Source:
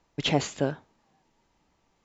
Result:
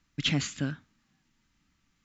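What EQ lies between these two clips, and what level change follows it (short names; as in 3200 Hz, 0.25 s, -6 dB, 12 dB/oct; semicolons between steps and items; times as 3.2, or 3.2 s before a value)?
band shelf 600 Hz -15.5 dB; 0.0 dB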